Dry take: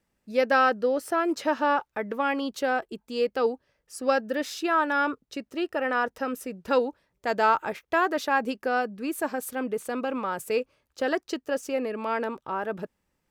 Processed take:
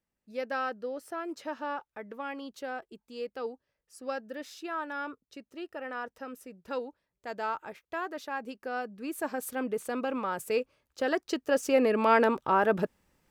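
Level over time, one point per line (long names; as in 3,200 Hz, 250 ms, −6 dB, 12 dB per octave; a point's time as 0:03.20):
0:08.44 −11.5 dB
0:09.48 −2.5 dB
0:11.11 −2.5 dB
0:11.91 +6 dB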